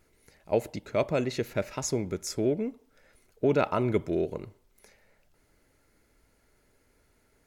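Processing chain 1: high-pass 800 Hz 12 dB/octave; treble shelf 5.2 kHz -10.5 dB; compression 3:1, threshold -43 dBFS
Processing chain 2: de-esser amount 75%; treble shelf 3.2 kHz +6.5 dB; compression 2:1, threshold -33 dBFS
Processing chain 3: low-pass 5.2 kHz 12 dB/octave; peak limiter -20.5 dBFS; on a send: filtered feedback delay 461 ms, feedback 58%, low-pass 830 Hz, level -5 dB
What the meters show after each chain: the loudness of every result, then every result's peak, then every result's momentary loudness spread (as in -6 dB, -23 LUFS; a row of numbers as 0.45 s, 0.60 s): -46.5 LUFS, -35.0 LUFS, -33.0 LUFS; -25.5 dBFS, -17.5 dBFS, -17.5 dBFS; 20 LU, 5 LU, 17 LU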